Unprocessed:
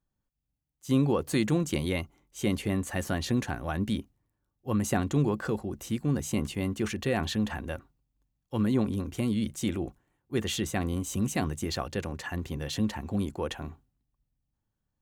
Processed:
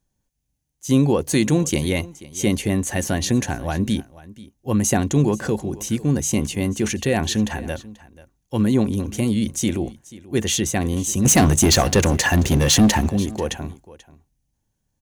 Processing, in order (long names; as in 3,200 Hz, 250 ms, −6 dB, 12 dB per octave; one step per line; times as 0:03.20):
thirty-one-band graphic EQ 1,250 Hz −9 dB, 6,300 Hz +9 dB, 10,000 Hz +6 dB
0:11.25–0:13.09: leveller curve on the samples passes 3
on a send: single-tap delay 486 ms −19.5 dB
on the sum: level +8 dB